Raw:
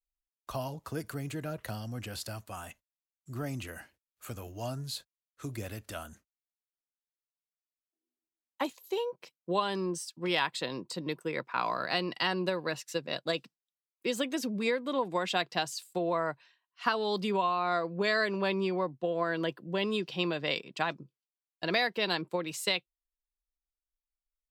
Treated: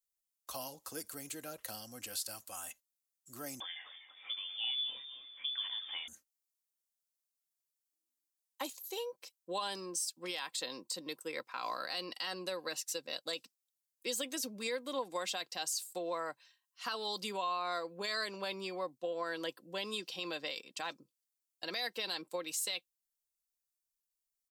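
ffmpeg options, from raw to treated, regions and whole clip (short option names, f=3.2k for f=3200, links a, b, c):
-filter_complex "[0:a]asettb=1/sr,asplit=3[a][b][c];[a]atrim=end=3.604[d];[b]atrim=start=3.6:end=6.08,asetpts=PTS-STARTPTS,afade=t=in:d=0.004:c=qsin,afade=t=out:st=2.476:d=0.004:c=qsin,aeval=exprs='val(0)+0.5*0.00335*sgn(val(0))':c=same,asplit=6[e][f][g][h][i][j];[f]adelay=242,afreqshift=-130,volume=-10dB[k];[g]adelay=484,afreqshift=-260,volume=-16.6dB[l];[h]adelay=726,afreqshift=-390,volume=-23.1dB[m];[i]adelay=968,afreqshift=-520,volume=-29.7dB[n];[j]adelay=1210,afreqshift=-650,volume=-36.2dB[o];[e][k][l][m][n][o]amix=inputs=6:normalize=0,atrim=end_sample=109368,lowpass=f=3.1k:t=q:w=0.5098,lowpass=f=3.1k:t=q:w=0.6013,lowpass=f=3.1k:t=q:w=0.9,lowpass=f=3.1k:t=q:w=2.563,afreqshift=-3600[p];[c]atrim=start=6.076[q];[d][p]acrossfade=d=0.004:c1=hsin:c2=qsin[r];[r][q]acrossfade=d=0.004:c1=qsin:c2=hsin,bass=f=250:g=-12,treble=f=4k:g=15,aecho=1:1:3.8:0.34,alimiter=limit=-19.5dB:level=0:latency=1:release=40,volume=-7dB"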